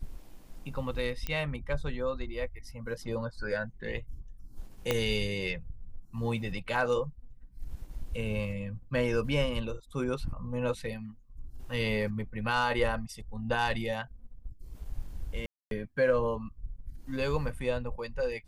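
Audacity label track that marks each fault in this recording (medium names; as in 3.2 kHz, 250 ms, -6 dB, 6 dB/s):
1.270000	1.270000	pop -18 dBFS
4.910000	4.910000	pop -12 dBFS
15.460000	15.710000	dropout 252 ms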